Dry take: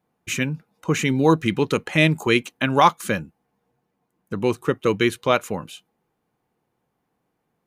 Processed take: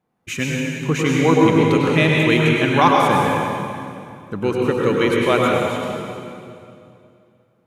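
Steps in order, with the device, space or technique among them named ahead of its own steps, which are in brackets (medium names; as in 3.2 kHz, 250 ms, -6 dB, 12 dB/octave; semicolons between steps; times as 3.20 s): swimming-pool hall (reverberation RT60 2.5 s, pre-delay 93 ms, DRR -3 dB; treble shelf 4.7 kHz -5 dB)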